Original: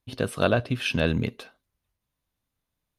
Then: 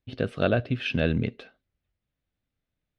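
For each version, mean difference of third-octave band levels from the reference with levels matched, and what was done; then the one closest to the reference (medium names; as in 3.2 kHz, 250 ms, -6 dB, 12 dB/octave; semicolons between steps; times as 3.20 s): 3.5 dB: low-pass 3.1 kHz 12 dB/octave; peaking EQ 1 kHz -11 dB 0.55 oct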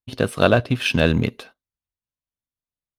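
1.5 dB: gate -49 dBFS, range -18 dB; in parallel at -4 dB: crossover distortion -35 dBFS; on the sum: trim +2.5 dB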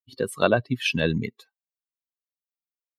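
8.0 dB: expander on every frequency bin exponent 2; high-pass 140 Hz 12 dB/octave; trim +5 dB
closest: second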